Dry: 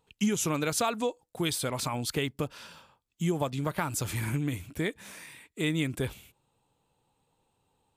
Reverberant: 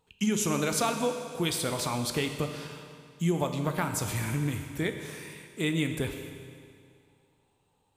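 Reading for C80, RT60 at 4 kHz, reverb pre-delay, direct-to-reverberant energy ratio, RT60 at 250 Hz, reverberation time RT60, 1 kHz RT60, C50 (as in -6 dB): 7.5 dB, 2.1 s, 10 ms, 5.5 dB, 2.2 s, 2.2 s, 2.2 s, 6.5 dB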